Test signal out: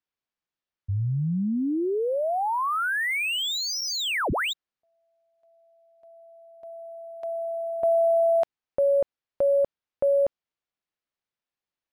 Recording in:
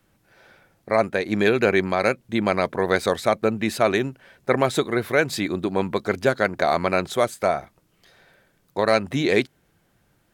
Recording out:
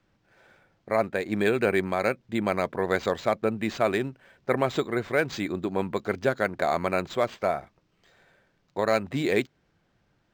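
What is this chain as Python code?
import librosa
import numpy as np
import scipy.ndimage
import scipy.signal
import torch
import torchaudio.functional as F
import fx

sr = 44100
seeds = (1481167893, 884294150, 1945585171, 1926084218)

y = np.interp(np.arange(len(x)), np.arange(len(x))[::4], x[::4])
y = y * 10.0 ** (-4.5 / 20.0)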